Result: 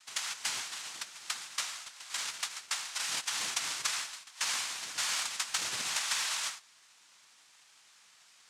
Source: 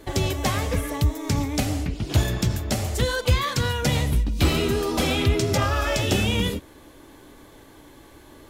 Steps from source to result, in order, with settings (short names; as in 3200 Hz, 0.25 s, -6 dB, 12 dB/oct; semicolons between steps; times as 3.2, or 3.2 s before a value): steep high-pass 1300 Hz 48 dB/oct; high shelf 5500 Hz +12 dB; noise vocoder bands 2; gain -7.5 dB